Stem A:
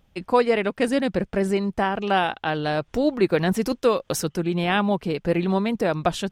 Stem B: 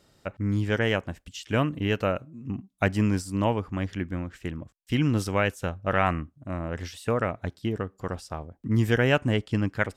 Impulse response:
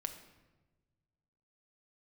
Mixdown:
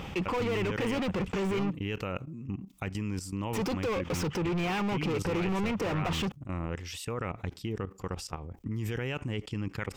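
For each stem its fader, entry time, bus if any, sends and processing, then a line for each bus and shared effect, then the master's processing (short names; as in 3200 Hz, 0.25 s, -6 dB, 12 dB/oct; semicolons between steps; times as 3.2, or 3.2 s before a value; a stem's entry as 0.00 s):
-12.5 dB, 0.00 s, muted 1.73–3.53, no send, low shelf 240 Hz +8.5 dB; overdrive pedal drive 40 dB, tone 1700 Hz, clips at -4 dBFS; auto duck -6 dB, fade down 0.30 s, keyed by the second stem
-4.5 dB, 0.00 s, no send, limiter -17 dBFS, peak gain reduction 9 dB; level quantiser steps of 16 dB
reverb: off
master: thirty-one-band EQ 250 Hz -4 dB, 630 Hz -10 dB, 1600 Hz -6 dB, 2500 Hz +4 dB, 4000 Hz -4 dB, 10000 Hz -6 dB; fast leveller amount 50%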